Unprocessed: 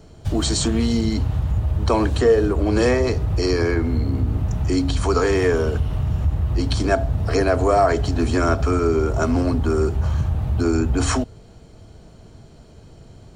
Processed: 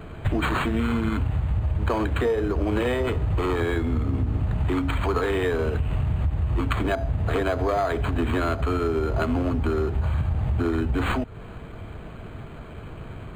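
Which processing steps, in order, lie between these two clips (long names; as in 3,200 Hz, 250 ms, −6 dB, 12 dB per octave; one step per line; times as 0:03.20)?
phase distortion by the signal itself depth 0.065 ms
parametric band 4,100 Hz +9 dB 2.6 octaves
downward compressor, threshold −27 dBFS, peak gain reduction 15.5 dB
linearly interpolated sample-rate reduction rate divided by 8×
level +6 dB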